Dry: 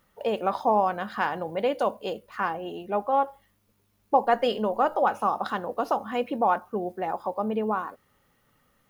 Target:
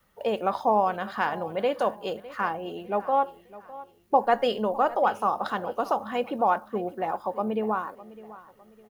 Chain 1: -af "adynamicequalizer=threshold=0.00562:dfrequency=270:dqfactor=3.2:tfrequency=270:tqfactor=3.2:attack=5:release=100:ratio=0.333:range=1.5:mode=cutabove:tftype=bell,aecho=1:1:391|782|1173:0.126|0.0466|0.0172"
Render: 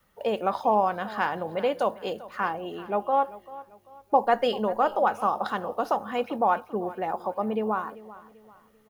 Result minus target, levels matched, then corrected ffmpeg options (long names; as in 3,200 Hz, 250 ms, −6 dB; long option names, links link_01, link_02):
echo 215 ms early
-af "adynamicequalizer=threshold=0.00562:dfrequency=270:dqfactor=3.2:tfrequency=270:tqfactor=3.2:attack=5:release=100:ratio=0.333:range=1.5:mode=cutabove:tftype=bell,aecho=1:1:606|1212|1818:0.126|0.0466|0.0172"